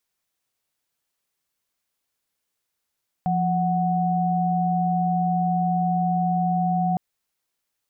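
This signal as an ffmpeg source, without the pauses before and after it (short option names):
-f lavfi -i "aevalsrc='0.0794*(sin(2*PI*174.61*t)+sin(2*PI*739.99*t))':d=3.71:s=44100"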